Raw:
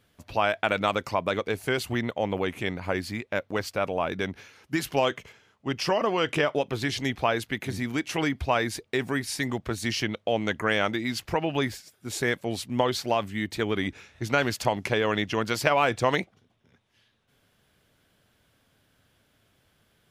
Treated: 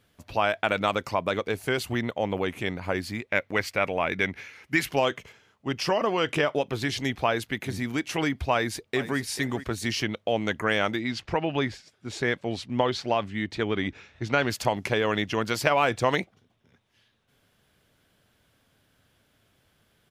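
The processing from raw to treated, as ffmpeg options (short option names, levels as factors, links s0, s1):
-filter_complex "[0:a]asettb=1/sr,asplit=3[s0][s1][s2];[s0]atrim=end=3.294[s3];[s1]atrim=start=3.29:end=4.89,asetpts=PTS-STARTPTS,afade=t=in:d=0.004:c=qsin,afade=t=out:st=1.596:d=0.004:c=qsin,equalizer=f=2100:t=o:w=0.63:g=11[s4];[s2]atrim=start=4.886[s5];[s3][s4]acrossfade=d=0.004:c1=hsin:c2=qsin[s6];[s6][s5]acrossfade=d=0.004:c1=qsin:c2=hsin,asplit=2[s7][s8];[s8]afade=t=in:st=8.52:d=0.01,afade=t=out:st=9.19:d=0.01,aecho=0:1:440|880:0.211349|0.0422698[s9];[s7][s9]amix=inputs=2:normalize=0,asettb=1/sr,asplit=3[s10][s11][s12];[s10]atrim=end=10.994[s13];[s11]atrim=start=10.99:end=14.5,asetpts=PTS-STARTPTS,afade=t=in:d=0.004:c=qsin,afade=t=out:st=3.506:d=0.004:c=qsin,lowpass=5100[s14];[s12]atrim=start=14.496[s15];[s13][s14]acrossfade=d=0.004:c1=hsin:c2=qsin[s16];[s16][s15]acrossfade=d=0.004:c1=qsin:c2=hsin"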